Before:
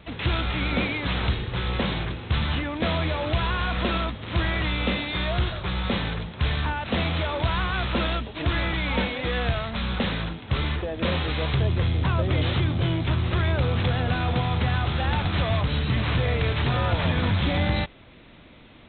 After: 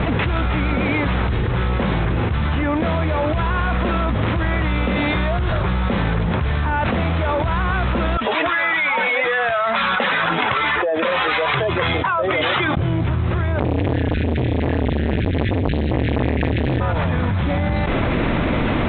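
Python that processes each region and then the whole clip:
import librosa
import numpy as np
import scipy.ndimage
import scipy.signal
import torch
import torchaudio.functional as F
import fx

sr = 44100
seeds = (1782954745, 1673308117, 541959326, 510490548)

y = fx.chain(x, sr, fx.spec_expand(power=1.6),
    fx.highpass(hz=1000.0, slope=12), at=(8.17, 12.77))
y = fx.chain(y, sr, fx.cheby1_bandstop(low_hz=140.0, high_hz=1700.0, order=5),
    fx.transformer_sat(knee_hz=710.0), at=(13.59, 16.81))
y = scipy.signal.sosfilt(scipy.signal.butter(2, 1900.0, 'lowpass', fs=sr, output='sos'), y)
y = fx.env_flatten(y, sr, amount_pct=100)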